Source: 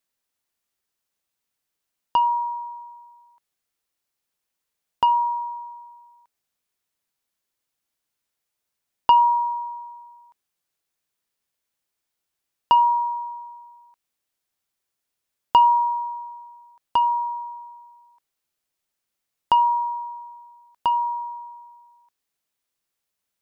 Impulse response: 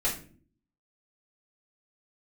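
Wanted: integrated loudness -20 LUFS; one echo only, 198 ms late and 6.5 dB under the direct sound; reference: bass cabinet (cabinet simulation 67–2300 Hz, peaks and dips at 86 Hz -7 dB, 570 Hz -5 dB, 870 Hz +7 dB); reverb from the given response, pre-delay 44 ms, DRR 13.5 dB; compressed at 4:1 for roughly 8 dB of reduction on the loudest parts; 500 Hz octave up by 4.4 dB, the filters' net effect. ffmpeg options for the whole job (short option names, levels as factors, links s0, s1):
-filter_complex "[0:a]equalizer=f=500:t=o:g=8,acompressor=threshold=0.112:ratio=4,aecho=1:1:198:0.473,asplit=2[s0][s1];[1:a]atrim=start_sample=2205,adelay=44[s2];[s1][s2]afir=irnorm=-1:irlink=0,volume=0.0841[s3];[s0][s3]amix=inputs=2:normalize=0,highpass=f=67:w=0.5412,highpass=f=67:w=1.3066,equalizer=f=86:t=q:w=4:g=-7,equalizer=f=570:t=q:w=4:g=-5,equalizer=f=870:t=q:w=4:g=7,lowpass=f=2300:w=0.5412,lowpass=f=2300:w=1.3066,volume=1.06"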